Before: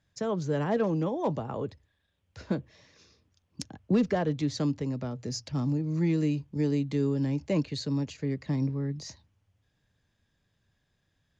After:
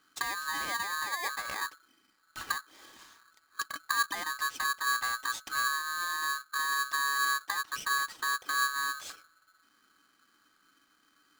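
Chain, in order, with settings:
downward compressor 4 to 1, threshold −41 dBFS, peak gain reduction 17.5 dB
hollow resonant body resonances 260/1,700/3,300 Hz, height 13 dB, ringing for 60 ms
ring modulator with a square carrier 1,400 Hz
level +3.5 dB

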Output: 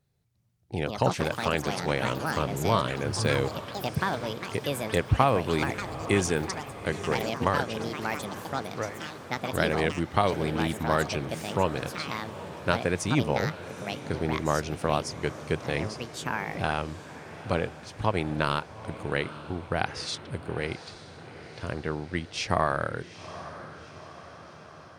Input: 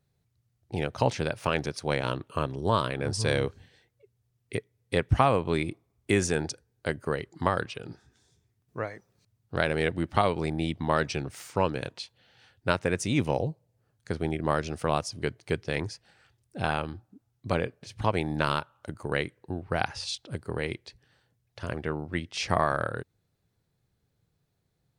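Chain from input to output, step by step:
delay with pitch and tempo change per echo 348 ms, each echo +6 semitones, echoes 3, each echo −6 dB
feedback delay with all-pass diffusion 844 ms, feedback 61%, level −14 dB

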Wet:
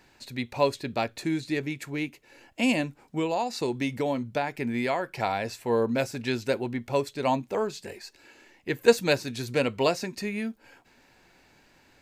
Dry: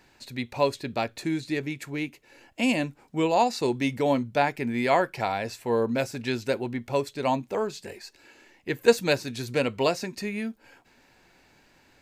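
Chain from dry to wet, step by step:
0:02.80–0:05.23: downward compressor, threshold −24 dBFS, peak gain reduction 8 dB

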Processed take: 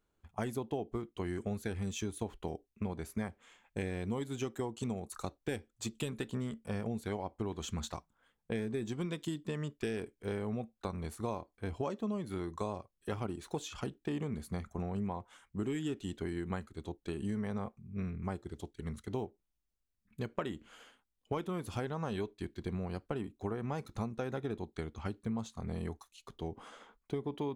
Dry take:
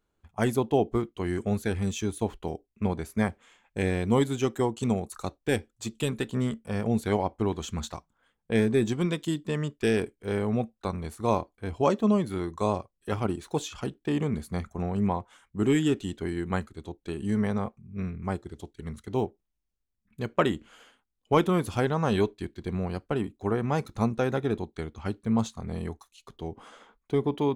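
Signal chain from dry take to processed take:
downward compressor, threshold −31 dBFS, peak gain reduction 14.5 dB
level −2.5 dB

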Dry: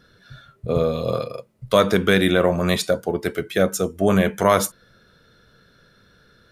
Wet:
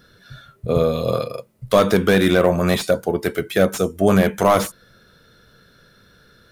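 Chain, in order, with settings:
high-shelf EQ 10,000 Hz +9.5 dB
slew-rate limiting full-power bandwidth 240 Hz
level +2.5 dB

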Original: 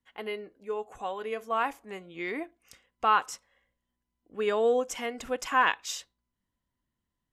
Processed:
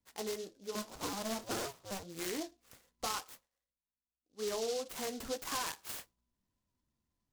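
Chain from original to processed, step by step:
0:00.75–0:02.03: sub-harmonics by changed cycles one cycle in 2, inverted
high-shelf EQ 5,600 Hz −10 dB
0:03.31–0:04.53: duck −20 dB, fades 0.17 s
downward compressor 6 to 1, threshold −33 dBFS, peak gain reduction 14 dB
flanger 1.8 Hz, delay 9.5 ms, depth 5.5 ms, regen −42%
soft clipping −31.5 dBFS, distortion −20 dB
short delay modulated by noise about 4,700 Hz, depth 0.11 ms
level +3.5 dB

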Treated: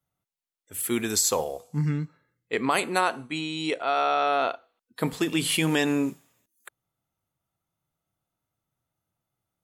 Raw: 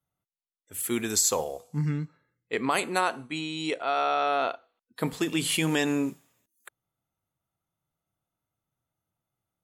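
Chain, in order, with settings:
dynamic equaliser 6,900 Hz, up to −4 dB, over −49 dBFS, Q 4
level +2 dB

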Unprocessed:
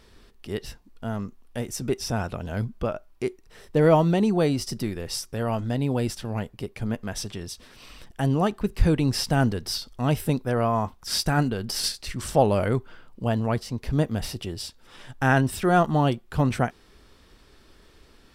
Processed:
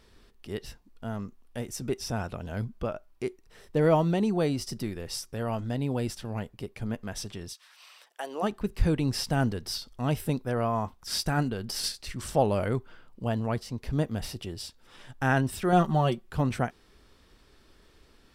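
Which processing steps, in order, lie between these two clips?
0:07.52–0:08.42: high-pass filter 1,100 Hz → 370 Hz 24 dB per octave
0:15.72–0:16.30: comb filter 5.3 ms, depth 69%
level −4.5 dB

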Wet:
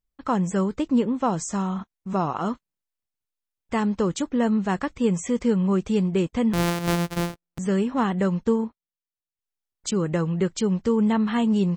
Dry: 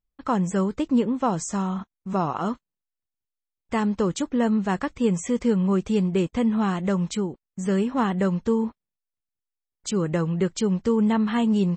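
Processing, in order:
0:06.53–0:07.59: samples sorted by size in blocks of 256 samples
0:08.43–0:09.94: transient designer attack +2 dB, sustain −10 dB

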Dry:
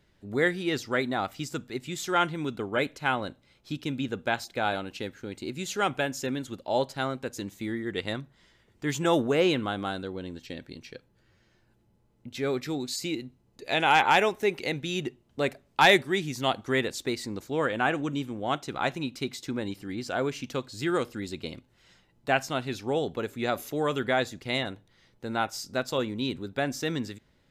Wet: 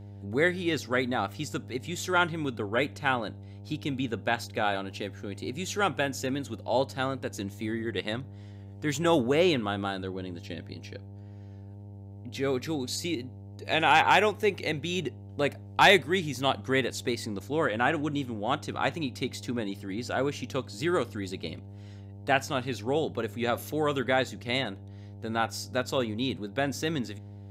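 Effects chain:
hum with harmonics 100 Hz, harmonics 9, −44 dBFS −9 dB per octave
tape wow and flutter 22 cents

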